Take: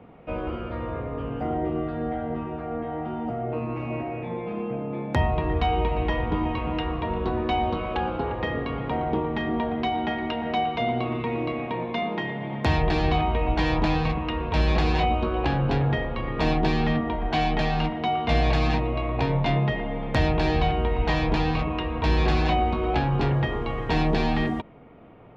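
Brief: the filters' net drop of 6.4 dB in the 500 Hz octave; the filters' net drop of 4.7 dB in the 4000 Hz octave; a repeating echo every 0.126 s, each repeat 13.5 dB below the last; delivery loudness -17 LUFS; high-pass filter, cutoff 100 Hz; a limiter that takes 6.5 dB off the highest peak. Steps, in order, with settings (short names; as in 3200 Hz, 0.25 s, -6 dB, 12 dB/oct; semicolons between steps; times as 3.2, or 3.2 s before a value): HPF 100 Hz; bell 500 Hz -8.5 dB; bell 4000 Hz -6.5 dB; limiter -19 dBFS; feedback echo 0.126 s, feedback 21%, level -13.5 dB; gain +13.5 dB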